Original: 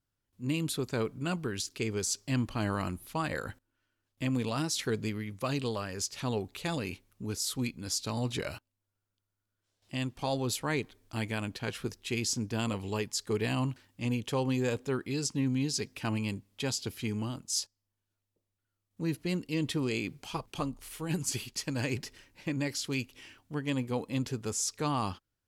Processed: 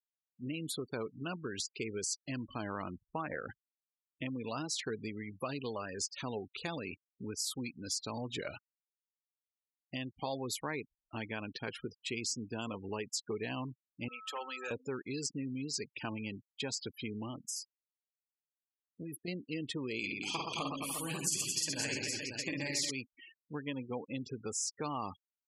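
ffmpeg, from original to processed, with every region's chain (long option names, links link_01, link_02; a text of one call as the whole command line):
ffmpeg -i in.wav -filter_complex "[0:a]asettb=1/sr,asplit=3[link_01][link_02][link_03];[link_01]atrim=end=2.954[link_04];[link_02]atrim=start=2.95:end=3.49,asetpts=PTS-STARTPTS,afade=type=in:duration=0.004:curve=qsin,afade=type=out:start_time=0.536:duration=0.004:curve=qsin,lowpass=frequency=3000:width=0.5412,lowpass=frequency=3000:width=1.3066,adynamicsmooth=sensitivity=6:basefreq=720[link_05];[link_03]atrim=start=3.486[link_06];[link_04][link_05]acrossfade=duration=0.004:curve1=hsin:curve2=qsin[link_07];[link_07][link_06]acrossfade=duration=0.004:curve1=qsin:curve2=hsin,asettb=1/sr,asplit=3[link_08][link_09][link_10];[link_08]atrim=end=14.084[link_11];[link_09]atrim=start=14.08:end=14.71,asetpts=PTS-STARTPTS,afade=type=in:duration=0.004:curve=qsin,afade=type=out:start_time=0.626:duration=0.004:curve=qsin,aeval=exprs='val(0)+0.00447*sin(2*PI*1300*n/s)':channel_layout=same,highpass=900,aeval=exprs='0.0266*(abs(mod(val(0)/0.0266+3,4)-2)-1)':channel_layout=same[link_12];[link_10]atrim=start=14.706[link_13];[link_11][link_12]acrossfade=duration=0.004:curve1=hsin:curve2=qsin[link_14];[link_14][link_13]acrossfade=duration=0.004:curve1=qsin:curve2=hsin,asettb=1/sr,asplit=3[link_15][link_16][link_17];[link_15]atrim=end=17.474[link_18];[link_16]atrim=start=17.47:end=19.28,asetpts=PTS-STARTPTS,afade=type=in:duration=0.004:curve=qsin,afade=type=out:start_time=1.806:duration=0.004:curve=qsin,aemphasis=mode=production:type=50fm,acompressor=threshold=-33dB:ratio=8:attack=3.2:release=140:knee=1:detection=peak,aeval=exprs='(tanh(35.5*val(0)+0.45)-tanh(0.45))/35.5':channel_layout=same[link_19];[link_17]atrim=start=19.276[link_20];[link_18][link_19]acrossfade=duration=0.004:curve1=hsin:curve2=qsin[link_21];[link_21][link_20]acrossfade=duration=0.004:curve1=qsin:curve2=hsin,asettb=1/sr,asplit=3[link_22][link_23][link_24];[link_22]atrim=end=19.994[link_25];[link_23]atrim=start=19.99:end=22.91,asetpts=PTS-STARTPTS,afade=type=in:duration=0.004:curve=qsin,afade=type=out:start_time=2.916:duration=0.004:curve=qsin,highshelf=frequency=2400:gain=9.5,bandreject=frequency=60:width_type=h:width=6,bandreject=frequency=120:width_type=h:width=6,bandreject=frequency=180:width_type=h:width=6,bandreject=frequency=240:width_type=h:width=6,bandreject=frequency=300:width_type=h:width=6,bandreject=frequency=360:width_type=h:width=6,bandreject=frequency=420:width_type=h:width=6,bandreject=frequency=480:width_type=h:width=6,bandreject=frequency=540:width_type=h:width=6,bandreject=frequency=600:width_type=h:width=6,aecho=1:1:50|120|218|355.2|547.3|816.2:0.794|0.631|0.501|0.398|0.316|0.251,atrim=end_sample=128772[link_26];[link_24]atrim=start=22.906[link_27];[link_25][link_26]acrossfade=duration=0.004:curve1=hsin:curve2=qsin[link_28];[link_28][link_27]acrossfade=duration=0.004:curve1=qsin:curve2=hsin,acompressor=threshold=-35dB:ratio=3,afftfilt=real='re*gte(hypot(re,im),0.00891)':imag='im*gte(hypot(re,im),0.00891)':win_size=1024:overlap=0.75,highpass=frequency=260:poles=1,volume=1dB" out.wav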